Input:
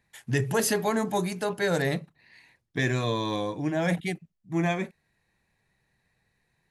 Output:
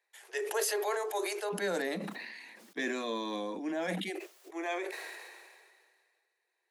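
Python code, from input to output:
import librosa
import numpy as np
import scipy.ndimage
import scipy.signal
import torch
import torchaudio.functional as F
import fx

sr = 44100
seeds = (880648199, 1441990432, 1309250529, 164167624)

y = fx.steep_highpass(x, sr, hz=fx.steps((0.0, 360.0), (1.52, 190.0), (4.08, 340.0)), slope=96)
y = fx.sustainer(y, sr, db_per_s=30.0)
y = F.gain(torch.from_numpy(y), -7.0).numpy()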